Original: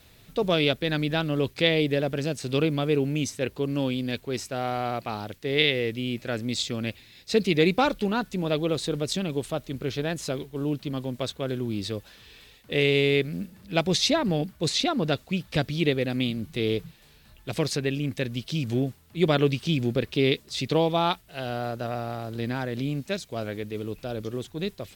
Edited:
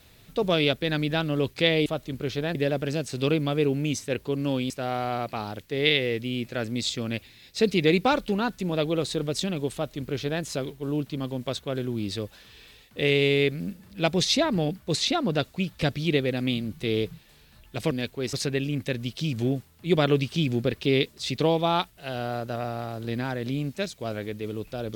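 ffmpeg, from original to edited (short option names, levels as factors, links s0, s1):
-filter_complex "[0:a]asplit=6[s0][s1][s2][s3][s4][s5];[s0]atrim=end=1.862[s6];[s1]atrim=start=9.468:end=10.162[s7];[s2]atrim=start=1.858:end=4.012[s8];[s3]atrim=start=4.428:end=17.642[s9];[s4]atrim=start=4.008:end=4.432[s10];[s5]atrim=start=17.638[s11];[s6][s7]acrossfade=d=0.004:c1=hsin:c2=hsin[s12];[s12][s8]acrossfade=d=0.004:c1=hsin:c2=hsin[s13];[s13][s9]acrossfade=d=0.004:c1=hsin:c2=hsin[s14];[s14][s10]acrossfade=d=0.004:c1=hsin:c2=hsin[s15];[s15][s11]acrossfade=d=0.004:c1=hsin:c2=hsin"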